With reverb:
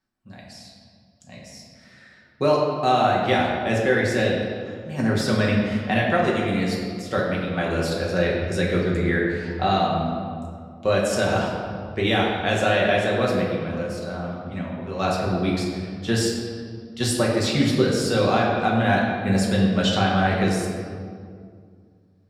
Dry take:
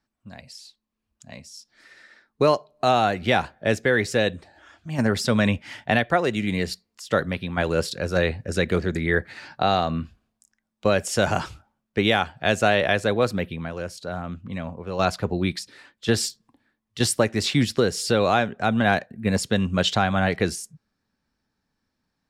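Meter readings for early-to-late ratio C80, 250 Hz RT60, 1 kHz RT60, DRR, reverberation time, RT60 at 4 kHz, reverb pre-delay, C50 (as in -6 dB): 3.0 dB, 2.8 s, 2.0 s, -4.0 dB, 2.2 s, 1.3 s, 5 ms, 1.0 dB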